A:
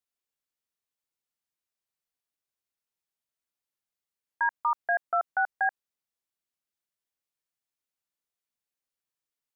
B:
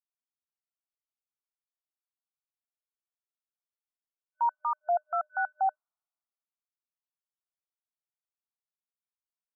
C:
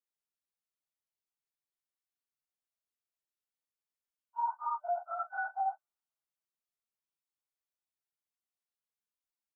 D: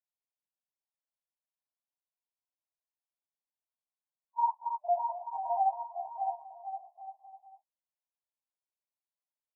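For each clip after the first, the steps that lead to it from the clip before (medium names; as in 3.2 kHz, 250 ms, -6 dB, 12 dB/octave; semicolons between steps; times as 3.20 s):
FFT band-pass 610–1500 Hz; peak limiter -28.5 dBFS, peak gain reduction 10.5 dB; three bands expanded up and down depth 40%; trim +7 dB
phase randomisation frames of 100 ms; peak limiter -23.5 dBFS, peak gain reduction 7 dB; doubling 14 ms -7.5 dB; trim -3.5 dB
bouncing-ball echo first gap 610 ms, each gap 0.75×, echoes 5; FFT band-pass 520–1100 Hz; upward expansion 1.5:1, over -46 dBFS; trim +5.5 dB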